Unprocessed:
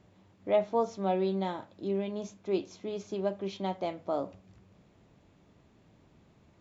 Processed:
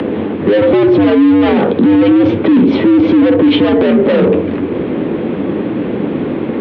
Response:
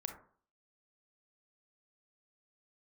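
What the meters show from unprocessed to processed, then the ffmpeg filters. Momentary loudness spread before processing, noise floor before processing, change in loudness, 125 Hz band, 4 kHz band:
10 LU, −63 dBFS, +21.5 dB, +22.0 dB, +23.0 dB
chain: -filter_complex "[0:a]flanger=delay=9.7:depth=2.4:regen=-62:speed=0.69:shape=sinusoidal,acrossover=split=340[link_01][link_02];[link_02]acompressor=threshold=-39dB:ratio=6[link_03];[link_01][link_03]amix=inputs=2:normalize=0,asplit=2[link_04][link_05];[link_05]highpass=frequency=720:poles=1,volume=30dB,asoftclip=type=tanh:threshold=-14.5dB[link_06];[link_04][link_06]amix=inputs=2:normalize=0,lowpass=frequency=1100:poles=1,volume=-6dB,volume=34.5dB,asoftclip=hard,volume=-34.5dB,highpass=frequency=300:width_type=q:width=0.5412,highpass=frequency=300:width_type=q:width=1.307,lowpass=frequency=3600:width_type=q:width=0.5176,lowpass=frequency=3600:width_type=q:width=0.7071,lowpass=frequency=3600:width_type=q:width=1.932,afreqshift=-98,lowshelf=frequency=520:width_type=q:width=1.5:gain=10.5,acompressor=mode=upward:threshold=-49dB:ratio=2.5,alimiter=level_in=29.5dB:limit=-1dB:release=50:level=0:latency=1,volume=-2dB"

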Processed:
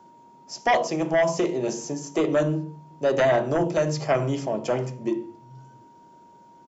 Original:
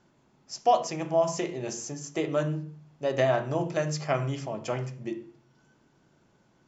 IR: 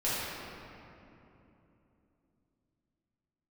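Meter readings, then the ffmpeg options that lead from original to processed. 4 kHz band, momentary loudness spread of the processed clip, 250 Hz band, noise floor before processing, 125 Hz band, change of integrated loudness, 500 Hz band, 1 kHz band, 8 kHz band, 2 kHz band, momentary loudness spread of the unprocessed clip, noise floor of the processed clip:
+3.0 dB, 9 LU, +7.0 dB, −66 dBFS, +2.5 dB, +4.5 dB, +5.0 dB, +2.0 dB, can't be measured, +7.0 dB, 11 LU, −52 dBFS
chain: -filter_complex "[0:a]acrossover=split=5600[link_01][link_02];[link_02]acompressor=threshold=-48dB:ratio=4:attack=1:release=60[link_03];[link_01][link_03]amix=inputs=2:normalize=0,aeval=exprs='val(0)+0.00178*sin(2*PI*940*n/s)':channel_layout=same,highshelf=frequency=2700:gain=10,acrossover=split=180|810|1600[link_04][link_05][link_06][link_07];[link_04]aecho=1:1:737:0.473[link_08];[link_05]aeval=exprs='0.2*sin(PI/2*2.82*val(0)/0.2)':channel_layout=same[link_09];[link_08][link_09][link_06][link_07]amix=inputs=4:normalize=0,volume=-3dB"

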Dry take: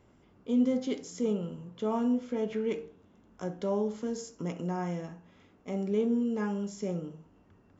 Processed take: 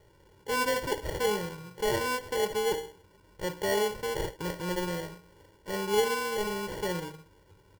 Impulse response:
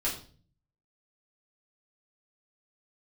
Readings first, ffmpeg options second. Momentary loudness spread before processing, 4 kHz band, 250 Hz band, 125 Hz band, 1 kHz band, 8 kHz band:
12 LU, +14.5 dB, −8.5 dB, −1.5 dB, +8.5 dB, can't be measured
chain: -af "crystalizer=i=3:c=0,acrusher=samples=35:mix=1:aa=0.000001,aecho=1:1:2.1:0.87"

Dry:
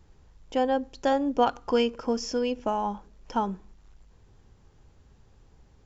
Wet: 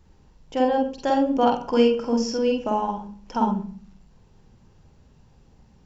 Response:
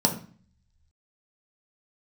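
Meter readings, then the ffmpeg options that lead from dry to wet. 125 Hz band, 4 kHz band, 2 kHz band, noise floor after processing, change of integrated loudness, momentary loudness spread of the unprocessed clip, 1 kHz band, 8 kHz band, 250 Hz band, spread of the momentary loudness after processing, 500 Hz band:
+6.5 dB, +2.0 dB, +1.5 dB, −56 dBFS, +4.5 dB, 8 LU, +4.0 dB, can't be measured, +6.5 dB, 12 LU, +4.5 dB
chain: -filter_complex "[0:a]asplit=2[link_01][link_02];[link_02]equalizer=frequency=2800:width_type=o:width=0.48:gain=12[link_03];[1:a]atrim=start_sample=2205,adelay=47[link_04];[link_03][link_04]afir=irnorm=-1:irlink=0,volume=-15.5dB[link_05];[link_01][link_05]amix=inputs=2:normalize=0"

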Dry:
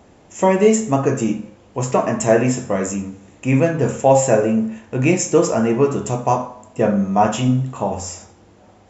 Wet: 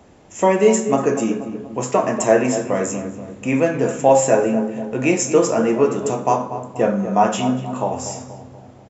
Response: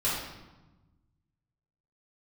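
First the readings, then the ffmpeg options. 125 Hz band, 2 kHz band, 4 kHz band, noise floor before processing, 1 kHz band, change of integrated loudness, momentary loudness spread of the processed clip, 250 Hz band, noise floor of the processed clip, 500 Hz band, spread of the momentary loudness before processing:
−7.0 dB, 0.0 dB, 0.0 dB, −50 dBFS, +0.5 dB, −0.5 dB, 12 LU, −1.5 dB, −44 dBFS, +0.5 dB, 13 LU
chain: -filter_complex "[0:a]asplit=2[link_01][link_02];[link_02]adelay=240,lowpass=frequency=1500:poles=1,volume=-10dB,asplit=2[link_03][link_04];[link_04]adelay=240,lowpass=frequency=1500:poles=1,volume=0.52,asplit=2[link_05][link_06];[link_06]adelay=240,lowpass=frequency=1500:poles=1,volume=0.52,asplit=2[link_07][link_08];[link_08]adelay=240,lowpass=frequency=1500:poles=1,volume=0.52,asplit=2[link_09][link_10];[link_10]adelay=240,lowpass=frequency=1500:poles=1,volume=0.52,asplit=2[link_11][link_12];[link_12]adelay=240,lowpass=frequency=1500:poles=1,volume=0.52[link_13];[link_01][link_03][link_05][link_07][link_09][link_11][link_13]amix=inputs=7:normalize=0,acrossover=split=190[link_14][link_15];[link_14]acompressor=threshold=-37dB:ratio=6[link_16];[link_16][link_15]amix=inputs=2:normalize=0"

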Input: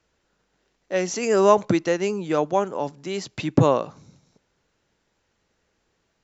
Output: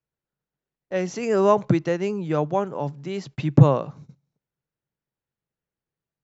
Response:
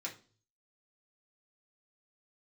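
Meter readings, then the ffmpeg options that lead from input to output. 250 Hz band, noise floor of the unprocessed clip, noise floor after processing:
+1.0 dB, −72 dBFS, below −85 dBFS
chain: -af "lowpass=frequency=2900:poles=1,equalizer=frequency=140:width_type=o:width=0.58:gain=12,agate=range=-19dB:threshold=-41dB:ratio=16:detection=peak,volume=-2dB"

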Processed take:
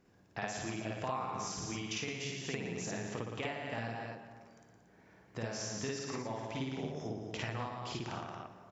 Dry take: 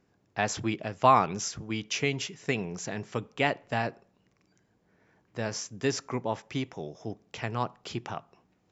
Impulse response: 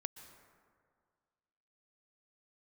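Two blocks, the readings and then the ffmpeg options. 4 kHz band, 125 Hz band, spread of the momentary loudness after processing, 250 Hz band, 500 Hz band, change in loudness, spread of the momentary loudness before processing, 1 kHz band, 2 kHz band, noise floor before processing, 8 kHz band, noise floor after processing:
−6.0 dB, −6.0 dB, 8 LU, −6.5 dB, −8.5 dB, −9.0 dB, 14 LU, −12.5 dB, −8.0 dB, −70 dBFS, can't be measured, −64 dBFS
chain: -filter_complex "[0:a]aecho=1:1:113.7|230.3:0.447|0.282,acompressor=threshold=-39dB:ratio=6,asplit=2[link_01][link_02];[1:a]atrim=start_sample=2205,adelay=53[link_03];[link_02][link_03]afir=irnorm=-1:irlink=0,volume=3dB[link_04];[link_01][link_04]amix=inputs=2:normalize=0"

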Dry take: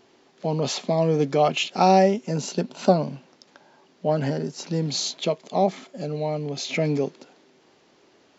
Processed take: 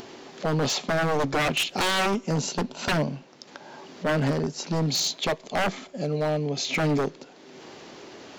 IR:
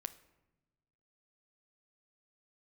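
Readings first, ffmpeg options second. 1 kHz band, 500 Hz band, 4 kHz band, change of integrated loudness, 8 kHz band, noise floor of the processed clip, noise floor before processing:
−5.0 dB, −5.0 dB, +2.5 dB, −2.0 dB, can't be measured, −50 dBFS, −59 dBFS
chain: -filter_complex "[0:a]acompressor=mode=upward:threshold=-34dB:ratio=2.5,aeval=exprs='0.0944*(abs(mod(val(0)/0.0944+3,4)-2)-1)':channel_layout=same,asplit=2[link_01][link_02];[1:a]atrim=start_sample=2205,afade=type=out:start_time=0.35:duration=0.01,atrim=end_sample=15876[link_03];[link_02][link_03]afir=irnorm=-1:irlink=0,volume=-8.5dB[link_04];[link_01][link_04]amix=inputs=2:normalize=0"

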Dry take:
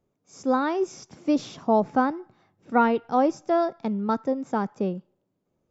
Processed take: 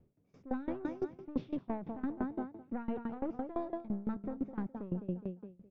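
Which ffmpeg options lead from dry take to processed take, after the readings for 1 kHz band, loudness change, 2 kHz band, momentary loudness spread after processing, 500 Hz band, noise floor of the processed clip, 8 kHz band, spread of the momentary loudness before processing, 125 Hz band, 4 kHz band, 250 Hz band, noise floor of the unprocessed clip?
−20.5 dB, −14.5 dB, −19.0 dB, 4 LU, −16.5 dB, −70 dBFS, can't be measured, 9 LU, −6.0 dB, below −20 dB, −10.5 dB, −76 dBFS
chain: -af "equalizer=frequency=1200:width=0.43:gain=-15,aecho=1:1:208|416|624|832:0.316|0.108|0.0366|0.0124,alimiter=limit=-22.5dB:level=0:latency=1:release=62,aeval=exprs='(tanh(25.1*val(0)+0.5)-tanh(0.5))/25.1':channel_layout=same,areverse,acompressor=threshold=-45dB:ratio=10,areverse,lowpass=frequency=2500:width=0.5412,lowpass=frequency=2500:width=1.3066,aeval=exprs='val(0)*pow(10,-20*if(lt(mod(5.9*n/s,1),2*abs(5.9)/1000),1-mod(5.9*n/s,1)/(2*abs(5.9)/1000),(mod(5.9*n/s,1)-2*abs(5.9)/1000)/(1-2*abs(5.9)/1000))/20)':channel_layout=same,volume=16.5dB"

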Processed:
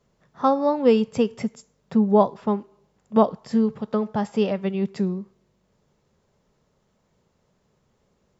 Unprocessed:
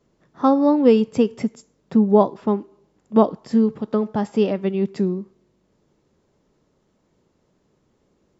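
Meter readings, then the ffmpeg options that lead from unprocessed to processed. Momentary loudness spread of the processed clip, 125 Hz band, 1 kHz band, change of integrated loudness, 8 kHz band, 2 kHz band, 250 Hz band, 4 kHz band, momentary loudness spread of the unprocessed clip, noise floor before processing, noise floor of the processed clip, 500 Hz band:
8 LU, −2.0 dB, −0.5 dB, −3.0 dB, can't be measured, 0.0 dB, −4.0 dB, 0.0 dB, 9 LU, −66 dBFS, −69 dBFS, −2.5 dB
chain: -af "equalizer=frequency=310:width_type=o:width=0.59:gain=-11"

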